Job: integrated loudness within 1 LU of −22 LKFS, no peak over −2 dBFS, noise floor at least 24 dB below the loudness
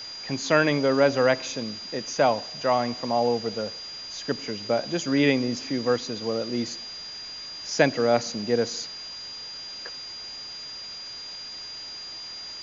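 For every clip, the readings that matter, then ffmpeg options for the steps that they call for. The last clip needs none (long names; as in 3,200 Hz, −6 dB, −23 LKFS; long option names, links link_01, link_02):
interfering tone 4,800 Hz; level of the tone −36 dBFS; background noise floor −39 dBFS; target noise floor −51 dBFS; integrated loudness −27.0 LKFS; sample peak −5.0 dBFS; target loudness −22.0 LKFS
→ -af "bandreject=frequency=4800:width=30"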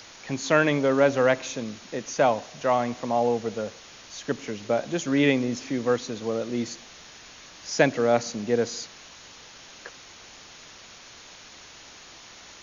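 interfering tone none found; background noise floor −48 dBFS; target noise floor −50 dBFS
→ -af "afftdn=noise_reduction=6:noise_floor=-48"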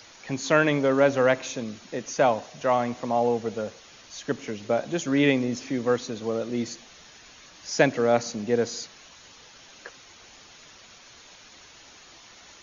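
background noise floor −51 dBFS; integrated loudness −25.5 LKFS; sample peak −4.5 dBFS; target loudness −22.0 LKFS
→ -af "volume=3.5dB,alimiter=limit=-2dB:level=0:latency=1"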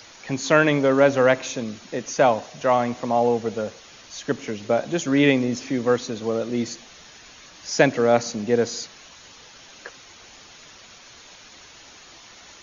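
integrated loudness −22.0 LKFS; sample peak −2.0 dBFS; background noise floor −47 dBFS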